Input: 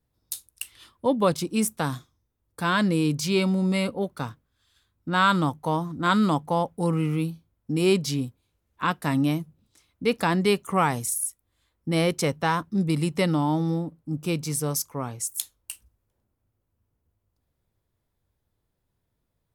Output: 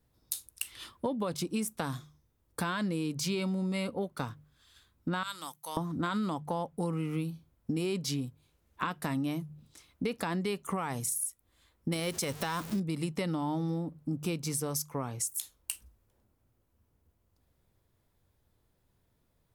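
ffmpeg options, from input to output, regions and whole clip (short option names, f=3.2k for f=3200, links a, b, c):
-filter_complex "[0:a]asettb=1/sr,asplit=3[a][b][c];[a]atrim=end=5.234[d];[b]atrim=start=5.23:end=5.77,asetpts=PTS-STARTPTS,afade=t=in:d=0.004:c=qsin,afade=t=out:st=0.536:d=0.004:c=qsin,aderivative,bandreject=f=60:t=h:w=6,bandreject=f=120:t=h:w=6,bandreject=f=180:t=h:w=6[e];[c]atrim=start=5.766[f];[d][e]acrossfade=d=0.004:c1=hsin:c2=qsin[g];[g][f]acrossfade=d=0.004:c1=qsin:c2=hsin,asettb=1/sr,asplit=3[h][i][j];[h]atrim=end=11.924[k];[i]atrim=start=11.92:end=12.8,asetpts=PTS-STARTPTS,afade=t=in:d=0.004:c=qsin,afade=t=out:st=0.876:d=0.004:c=qsin,aeval=exprs='val(0)+0.5*0.0158*sgn(val(0))':c=same,highshelf=f=3.2k:g=11[l];[j]atrim=start=12.796[m];[k][l]acrossfade=d=0.004:c1=hsin:c2=qsin[n];[n][m]acrossfade=d=0.004:c1=qsin:c2=hsin,bandreject=f=50:t=h:w=6,bandreject=f=100:t=h:w=6,bandreject=f=150:t=h:w=6,alimiter=limit=-15dB:level=0:latency=1,acompressor=threshold=-35dB:ratio=6,volume=4.5dB"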